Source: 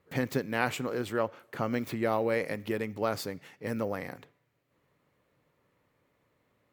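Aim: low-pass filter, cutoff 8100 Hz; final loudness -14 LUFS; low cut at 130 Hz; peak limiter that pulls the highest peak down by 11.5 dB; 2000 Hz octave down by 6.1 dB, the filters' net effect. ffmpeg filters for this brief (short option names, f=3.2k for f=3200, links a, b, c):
-af "highpass=130,lowpass=8.1k,equalizer=f=2k:t=o:g=-8,volume=23dB,alimiter=limit=-2dB:level=0:latency=1"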